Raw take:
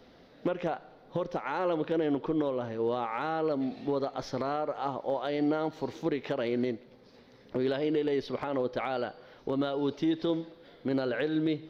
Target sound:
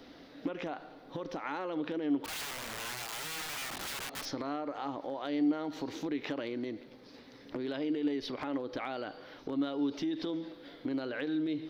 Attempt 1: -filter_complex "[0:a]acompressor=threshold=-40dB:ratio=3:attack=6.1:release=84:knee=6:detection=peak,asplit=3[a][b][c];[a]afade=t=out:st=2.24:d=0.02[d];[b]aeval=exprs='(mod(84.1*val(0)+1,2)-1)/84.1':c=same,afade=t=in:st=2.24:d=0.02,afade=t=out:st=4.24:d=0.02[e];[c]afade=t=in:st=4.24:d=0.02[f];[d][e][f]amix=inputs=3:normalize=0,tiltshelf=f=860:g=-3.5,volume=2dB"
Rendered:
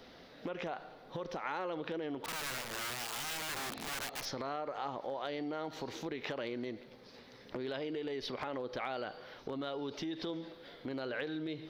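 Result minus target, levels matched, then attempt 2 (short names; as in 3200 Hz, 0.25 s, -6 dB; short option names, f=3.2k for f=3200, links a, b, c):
250 Hz band -5.0 dB
-filter_complex "[0:a]acompressor=threshold=-40dB:ratio=3:attack=6.1:release=84:knee=6:detection=peak,equalizer=f=290:t=o:w=0.27:g=13,asplit=3[a][b][c];[a]afade=t=out:st=2.24:d=0.02[d];[b]aeval=exprs='(mod(84.1*val(0)+1,2)-1)/84.1':c=same,afade=t=in:st=2.24:d=0.02,afade=t=out:st=4.24:d=0.02[e];[c]afade=t=in:st=4.24:d=0.02[f];[d][e][f]amix=inputs=3:normalize=0,tiltshelf=f=860:g=-3.5,volume=2dB"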